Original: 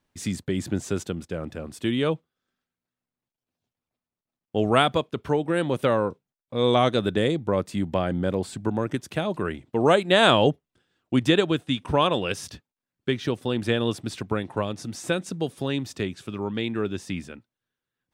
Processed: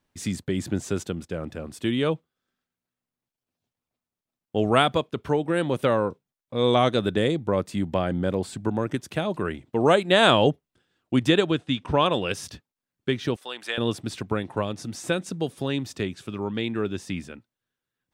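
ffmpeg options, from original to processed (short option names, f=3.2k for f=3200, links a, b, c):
-filter_complex "[0:a]asettb=1/sr,asplit=3[a][b][c];[a]atrim=end=11.514[d];[b]atrim=start=11.51:end=12.06,asetpts=PTS-STARTPTS,afade=t=in:d=0.004:c=qsin,afade=t=out:st=0.546:d=0.004:c=qsin,lowpass=6.5k[e];[c]atrim=start=12.056[f];[d][e]acrossfade=d=0.004:c1=hsin:c2=qsin[g];[g][f]acrossfade=d=0.004:c1=qsin:c2=hsin,asettb=1/sr,asplit=3[h][i][j];[h]atrim=end=13.364[k];[i]atrim=start=13.36:end=13.78,asetpts=PTS-STARTPTS,afade=t=in:d=0.004:c=qsin,afade=t=out:st=0.416:d=0.004:c=qsin,highpass=890[l];[j]atrim=start=13.776[m];[k][l]acrossfade=d=0.004:c1=hsin:c2=qsin[n];[n][m]acrossfade=d=0.004:c1=qsin:c2=hsin"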